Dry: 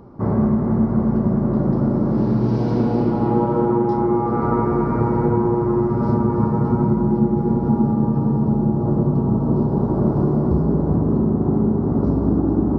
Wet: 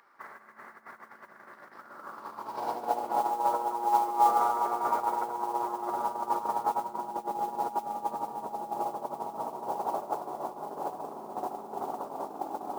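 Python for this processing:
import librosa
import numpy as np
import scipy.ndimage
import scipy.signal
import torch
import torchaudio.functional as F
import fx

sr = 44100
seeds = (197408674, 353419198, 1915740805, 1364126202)

y = fx.over_compress(x, sr, threshold_db=-21.0, ratio=-0.5)
y = fx.filter_sweep_highpass(y, sr, from_hz=1800.0, to_hz=770.0, start_s=1.72, end_s=2.74, q=3.2)
y = fx.mod_noise(y, sr, seeds[0], snr_db=23)
y = y * librosa.db_to_amplitude(-6.5)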